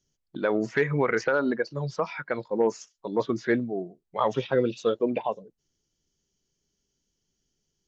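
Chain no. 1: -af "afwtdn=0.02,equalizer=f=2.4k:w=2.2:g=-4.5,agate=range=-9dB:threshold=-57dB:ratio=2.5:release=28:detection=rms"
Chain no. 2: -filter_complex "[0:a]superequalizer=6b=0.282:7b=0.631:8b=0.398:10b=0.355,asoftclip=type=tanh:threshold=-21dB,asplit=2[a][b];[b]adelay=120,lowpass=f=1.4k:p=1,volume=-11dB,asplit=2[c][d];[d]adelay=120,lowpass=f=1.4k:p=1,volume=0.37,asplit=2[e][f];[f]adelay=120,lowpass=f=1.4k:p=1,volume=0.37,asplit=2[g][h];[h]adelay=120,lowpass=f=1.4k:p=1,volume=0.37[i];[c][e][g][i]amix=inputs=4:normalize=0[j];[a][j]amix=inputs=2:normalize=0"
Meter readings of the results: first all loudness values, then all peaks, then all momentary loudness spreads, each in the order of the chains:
-28.0, -32.0 LUFS; -11.5, -20.0 dBFS; 9, 9 LU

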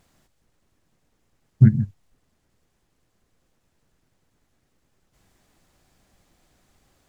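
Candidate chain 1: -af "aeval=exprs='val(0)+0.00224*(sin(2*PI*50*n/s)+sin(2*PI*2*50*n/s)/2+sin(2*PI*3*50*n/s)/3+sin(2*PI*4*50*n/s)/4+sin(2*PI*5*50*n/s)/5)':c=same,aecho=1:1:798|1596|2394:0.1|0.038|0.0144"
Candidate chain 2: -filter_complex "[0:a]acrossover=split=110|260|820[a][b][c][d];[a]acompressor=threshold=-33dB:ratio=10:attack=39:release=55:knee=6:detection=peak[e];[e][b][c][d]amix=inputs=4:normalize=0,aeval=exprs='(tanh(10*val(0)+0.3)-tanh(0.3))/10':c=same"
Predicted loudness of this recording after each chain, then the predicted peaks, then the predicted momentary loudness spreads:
-21.5, -29.0 LUFS; -2.5, -18.0 dBFS; 20, 6 LU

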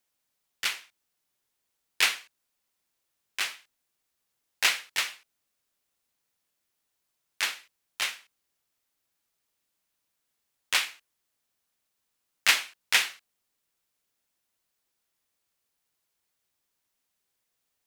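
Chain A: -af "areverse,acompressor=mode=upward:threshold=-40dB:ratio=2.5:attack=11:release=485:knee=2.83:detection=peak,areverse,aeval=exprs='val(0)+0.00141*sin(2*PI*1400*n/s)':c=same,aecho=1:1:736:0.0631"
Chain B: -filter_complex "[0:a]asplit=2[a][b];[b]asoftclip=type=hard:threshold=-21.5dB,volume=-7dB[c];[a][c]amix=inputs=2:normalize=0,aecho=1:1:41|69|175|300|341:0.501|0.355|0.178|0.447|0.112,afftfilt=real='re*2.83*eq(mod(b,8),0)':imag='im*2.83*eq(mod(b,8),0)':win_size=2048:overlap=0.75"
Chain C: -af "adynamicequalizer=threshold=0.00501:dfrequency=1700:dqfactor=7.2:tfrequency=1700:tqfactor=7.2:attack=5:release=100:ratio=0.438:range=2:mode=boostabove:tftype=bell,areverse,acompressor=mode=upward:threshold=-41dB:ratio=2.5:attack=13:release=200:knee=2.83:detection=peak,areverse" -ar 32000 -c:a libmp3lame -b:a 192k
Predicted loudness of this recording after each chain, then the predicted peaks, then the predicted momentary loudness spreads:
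-28.0, -27.0, -28.0 LUFS; -6.0, -9.5, -6.0 dBFS; 21, 15, 16 LU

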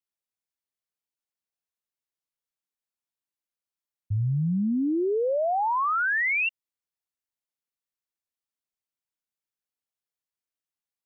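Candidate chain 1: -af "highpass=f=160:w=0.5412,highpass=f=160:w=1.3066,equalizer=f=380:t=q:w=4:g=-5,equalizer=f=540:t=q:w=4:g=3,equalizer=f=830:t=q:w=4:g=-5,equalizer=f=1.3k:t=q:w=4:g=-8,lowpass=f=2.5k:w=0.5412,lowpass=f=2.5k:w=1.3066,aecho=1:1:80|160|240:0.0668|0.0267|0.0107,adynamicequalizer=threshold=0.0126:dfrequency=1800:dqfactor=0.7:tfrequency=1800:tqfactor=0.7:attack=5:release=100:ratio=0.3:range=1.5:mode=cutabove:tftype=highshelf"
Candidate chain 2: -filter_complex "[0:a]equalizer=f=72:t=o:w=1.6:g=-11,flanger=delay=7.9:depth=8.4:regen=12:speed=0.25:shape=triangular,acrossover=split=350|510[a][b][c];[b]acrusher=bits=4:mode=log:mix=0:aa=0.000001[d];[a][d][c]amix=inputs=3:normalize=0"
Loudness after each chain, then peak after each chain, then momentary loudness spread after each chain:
-27.5, -29.0 LUFS; -19.0, -22.0 dBFS; 10, 9 LU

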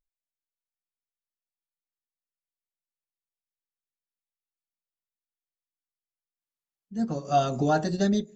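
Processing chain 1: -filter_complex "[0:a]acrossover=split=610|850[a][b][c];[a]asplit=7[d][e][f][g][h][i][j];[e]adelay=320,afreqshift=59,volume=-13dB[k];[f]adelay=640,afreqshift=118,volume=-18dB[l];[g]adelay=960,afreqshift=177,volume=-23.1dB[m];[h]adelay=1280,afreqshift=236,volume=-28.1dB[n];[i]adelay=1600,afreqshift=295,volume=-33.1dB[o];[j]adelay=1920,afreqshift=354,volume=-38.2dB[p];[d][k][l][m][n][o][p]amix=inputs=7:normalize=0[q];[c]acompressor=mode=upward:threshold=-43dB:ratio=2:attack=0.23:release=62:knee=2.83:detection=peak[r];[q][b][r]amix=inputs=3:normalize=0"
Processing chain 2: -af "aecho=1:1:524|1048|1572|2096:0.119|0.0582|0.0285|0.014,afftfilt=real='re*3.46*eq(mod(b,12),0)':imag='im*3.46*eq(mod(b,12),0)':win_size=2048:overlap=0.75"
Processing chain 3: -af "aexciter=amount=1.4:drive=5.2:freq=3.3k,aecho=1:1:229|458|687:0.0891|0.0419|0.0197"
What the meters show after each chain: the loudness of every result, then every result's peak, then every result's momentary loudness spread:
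-26.0, -29.0, -26.0 LUFS; -11.0, -12.5, -12.0 dBFS; 8, 18, 8 LU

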